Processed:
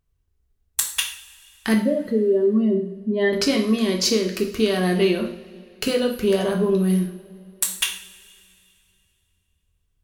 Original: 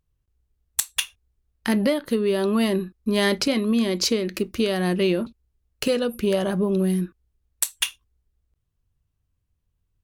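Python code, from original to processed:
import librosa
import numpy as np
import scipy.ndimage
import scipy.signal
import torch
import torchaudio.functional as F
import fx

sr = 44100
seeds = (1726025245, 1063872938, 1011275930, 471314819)

y = fx.spec_expand(x, sr, power=2.2, at=(1.74, 3.33))
y = fx.rev_double_slope(y, sr, seeds[0], early_s=0.5, late_s=2.7, knee_db=-20, drr_db=1.5)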